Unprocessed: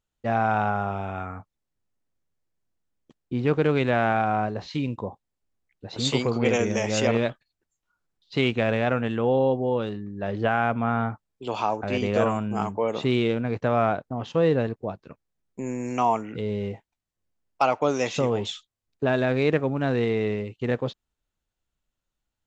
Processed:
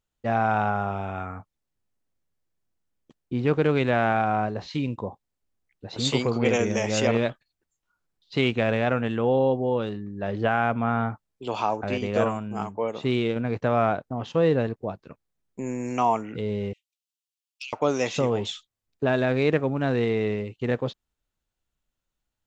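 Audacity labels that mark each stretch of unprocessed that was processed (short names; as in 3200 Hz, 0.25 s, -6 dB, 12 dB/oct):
11.940000	13.360000	upward expander, over -32 dBFS
16.730000	17.730000	steep high-pass 2600 Hz 48 dB/oct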